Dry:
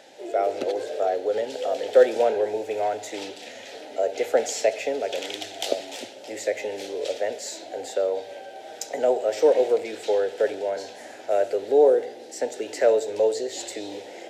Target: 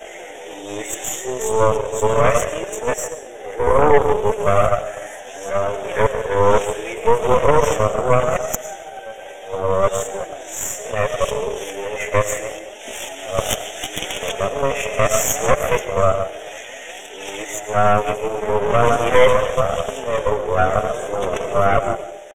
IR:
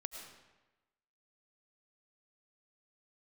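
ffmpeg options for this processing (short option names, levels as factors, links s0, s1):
-filter_complex "[0:a]areverse,atempo=0.64,asplit=2[s0][s1];[s1]equalizer=f=3200:w=1.5:g=-6[s2];[1:a]atrim=start_sample=2205[s3];[s2][s3]afir=irnorm=-1:irlink=0,volume=2[s4];[s0][s4]amix=inputs=2:normalize=0,flanger=delay=4.5:depth=5.3:regen=29:speed=0.7:shape=sinusoidal,highpass=f=1000:p=1,asplit=2[s5][s6];[s6]adelay=150,highpass=300,lowpass=3400,asoftclip=type=hard:threshold=0.15,volume=0.282[s7];[s5][s7]amix=inputs=2:normalize=0,aeval=exprs='0.473*(cos(1*acos(clip(val(0)/0.473,-1,1)))-cos(1*PI/2))+0.133*(cos(6*acos(clip(val(0)/0.473,-1,1)))-cos(6*PI/2))':c=same,asuperstop=centerf=4500:order=8:qfactor=2,alimiter=level_in=2.51:limit=0.891:release=50:level=0:latency=1,volume=0.891"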